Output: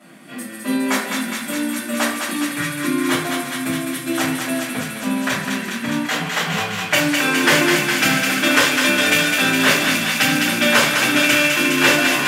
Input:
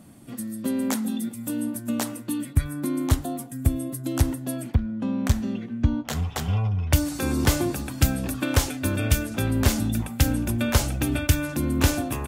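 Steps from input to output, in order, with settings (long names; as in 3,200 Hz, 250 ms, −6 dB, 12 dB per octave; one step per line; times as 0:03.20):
elliptic high-pass filter 160 Hz, stop band 60 dB
parametric band 2,000 Hz +14.5 dB 2.2 octaves
on a send: feedback echo with a high-pass in the loop 206 ms, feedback 84%, high-pass 900 Hz, level −3.5 dB
on the sum: rectangular room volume 53 cubic metres, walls mixed, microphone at 2.9 metres
level −9 dB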